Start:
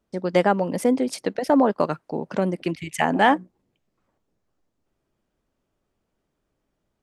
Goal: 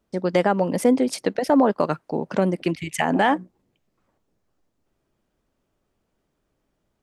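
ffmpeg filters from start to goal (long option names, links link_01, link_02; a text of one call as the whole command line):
ffmpeg -i in.wav -af "alimiter=limit=-10dB:level=0:latency=1:release=92,volume=2.5dB" out.wav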